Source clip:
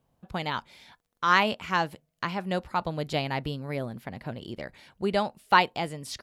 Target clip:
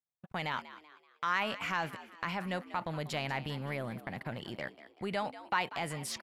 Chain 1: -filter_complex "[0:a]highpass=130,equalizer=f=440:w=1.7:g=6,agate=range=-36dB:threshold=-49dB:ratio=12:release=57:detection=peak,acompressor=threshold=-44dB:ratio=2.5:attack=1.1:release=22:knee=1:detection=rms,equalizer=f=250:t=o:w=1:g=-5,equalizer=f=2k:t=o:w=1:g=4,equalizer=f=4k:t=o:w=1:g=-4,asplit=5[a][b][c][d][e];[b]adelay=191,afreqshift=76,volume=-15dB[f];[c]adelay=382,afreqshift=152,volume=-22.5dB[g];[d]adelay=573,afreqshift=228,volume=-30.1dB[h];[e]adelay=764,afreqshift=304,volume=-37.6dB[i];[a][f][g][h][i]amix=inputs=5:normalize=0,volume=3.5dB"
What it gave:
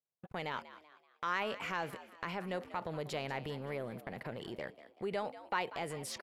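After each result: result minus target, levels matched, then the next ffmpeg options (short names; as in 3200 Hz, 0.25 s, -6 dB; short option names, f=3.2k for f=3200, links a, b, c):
compressor: peak gain reduction +4.5 dB; 500 Hz band +4.0 dB
-filter_complex "[0:a]highpass=130,equalizer=f=440:w=1.7:g=6,agate=range=-36dB:threshold=-49dB:ratio=12:release=57:detection=peak,acompressor=threshold=-37.5dB:ratio=2.5:attack=1.1:release=22:knee=1:detection=rms,equalizer=f=250:t=o:w=1:g=-5,equalizer=f=2k:t=o:w=1:g=4,equalizer=f=4k:t=o:w=1:g=-4,asplit=5[a][b][c][d][e];[b]adelay=191,afreqshift=76,volume=-15dB[f];[c]adelay=382,afreqshift=152,volume=-22.5dB[g];[d]adelay=573,afreqshift=228,volume=-30.1dB[h];[e]adelay=764,afreqshift=304,volume=-37.6dB[i];[a][f][g][h][i]amix=inputs=5:normalize=0,volume=3.5dB"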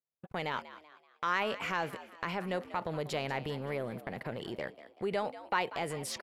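500 Hz band +4.0 dB
-filter_complex "[0:a]highpass=130,equalizer=f=440:w=1.7:g=-5,agate=range=-36dB:threshold=-49dB:ratio=12:release=57:detection=peak,acompressor=threshold=-37.5dB:ratio=2.5:attack=1.1:release=22:knee=1:detection=rms,equalizer=f=250:t=o:w=1:g=-5,equalizer=f=2k:t=o:w=1:g=4,equalizer=f=4k:t=o:w=1:g=-4,asplit=5[a][b][c][d][e];[b]adelay=191,afreqshift=76,volume=-15dB[f];[c]adelay=382,afreqshift=152,volume=-22.5dB[g];[d]adelay=573,afreqshift=228,volume=-30.1dB[h];[e]adelay=764,afreqshift=304,volume=-37.6dB[i];[a][f][g][h][i]amix=inputs=5:normalize=0,volume=3.5dB"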